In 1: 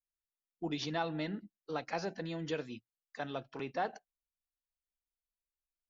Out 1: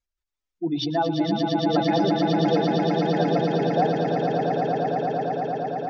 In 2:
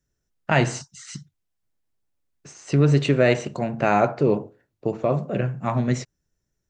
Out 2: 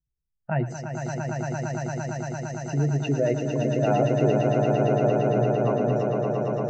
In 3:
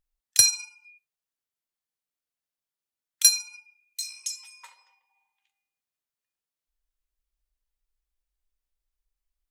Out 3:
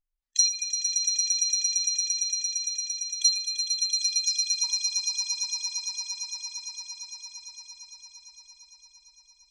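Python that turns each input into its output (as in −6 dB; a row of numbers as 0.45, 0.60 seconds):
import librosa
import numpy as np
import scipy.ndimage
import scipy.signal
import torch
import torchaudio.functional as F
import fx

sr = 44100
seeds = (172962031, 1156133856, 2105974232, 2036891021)

p1 = fx.spec_expand(x, sr, power=2.0)
p2 = scipy.signal.sosfilt(scipy.signal.butter(4, 7000.0, 'lowpass', fs=sr, output='sos'), p1)
p3 = p2 + fx.echo_swell(p2, sr, ms=114, loudest=8, wet_db=-5.5, dry=0)
y = p3 * 10.0 ** (-9 / 20.0) / np.max(np.abs(p3))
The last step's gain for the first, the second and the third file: +11.5, −6.0, −2.5 decibels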